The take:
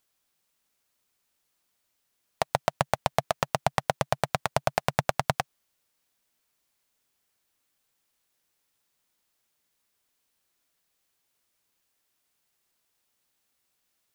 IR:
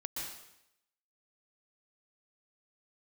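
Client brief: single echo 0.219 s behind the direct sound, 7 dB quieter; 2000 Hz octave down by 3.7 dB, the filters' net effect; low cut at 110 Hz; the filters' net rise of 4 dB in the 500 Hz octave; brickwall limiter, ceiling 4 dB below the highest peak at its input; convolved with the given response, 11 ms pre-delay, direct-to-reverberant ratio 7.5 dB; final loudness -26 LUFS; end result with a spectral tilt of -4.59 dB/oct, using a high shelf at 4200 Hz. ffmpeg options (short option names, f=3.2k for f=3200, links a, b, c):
-filter_complex "[0:a]highpass=110,equalizer=f=500:t=o:g=6,equalizer=f=2k:t=o:g=-4.5,highshelf=f=4.2k:g=-3.5,alimiter=limit=-9dB:level=0:latency=1,aecho=1:1:219:0.447,asplit=2[a][b];[1:a]atrim=start_sample=2205,adelay=11[c];[b][c]afir=irnorm=-1:irlink=0,volume=-8.5dB[d];[a][d]amix=inputs=2:normalize=0,volume=3.5dB"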